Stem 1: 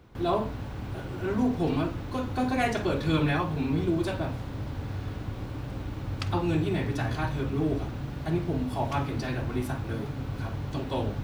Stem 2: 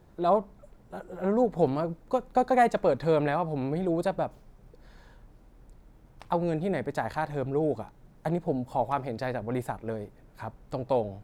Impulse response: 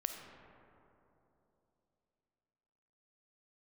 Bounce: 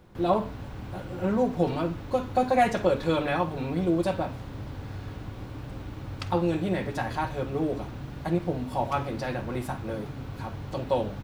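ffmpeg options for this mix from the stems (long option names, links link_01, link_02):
-filter_complex "[0:a]acrossover=split=390[link_01][link_02];[link_01]acompressor=threshold=-32dB:ratio=2.5[link_03];[link_03][link_02]amix=inputs=2:normalize=0,volume=-2dB[link_04];[1:a]aecho=1:1:5.5:0.65,volume=-2.5dB[link_05];[link_04][link_05]amix=inputs=2:normalize=0"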